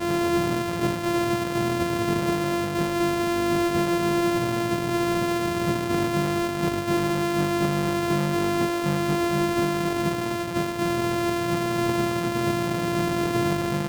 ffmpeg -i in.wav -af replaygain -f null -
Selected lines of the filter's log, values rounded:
track_gain = +7.0 dB
track_peak = 0.091